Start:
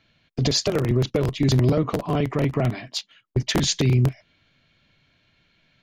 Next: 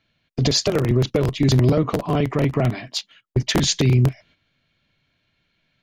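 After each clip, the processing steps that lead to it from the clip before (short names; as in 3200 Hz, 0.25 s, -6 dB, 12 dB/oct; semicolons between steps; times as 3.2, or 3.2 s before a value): gate -51 dBFS, range -8 dB; gain +2.5 dB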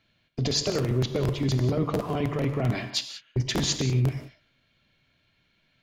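reverse; compressor, threshold -23 dBFS, peak gain reduction 10 dB; reverse; non-linear reverb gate 0.21 s flat, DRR 8 dB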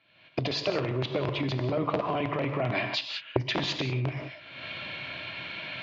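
recorder AGC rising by 53 dB/s; speaker cabinet 160–4000 Hz, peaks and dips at 160 Hz -4 dB, 230 Hz -9 dB, 430 Hz -5 dB, 620 Hz +4 dB, 1000 Hz +4 dB, 2500 Hz +5 dB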